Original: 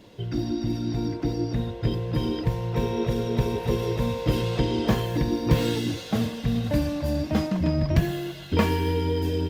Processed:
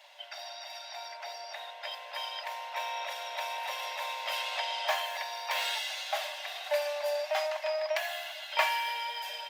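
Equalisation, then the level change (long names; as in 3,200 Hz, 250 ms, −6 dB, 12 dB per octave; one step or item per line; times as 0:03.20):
Chebyshev high-pass with heavy ripple 580 Hz, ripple 6 dB
+4.5 dB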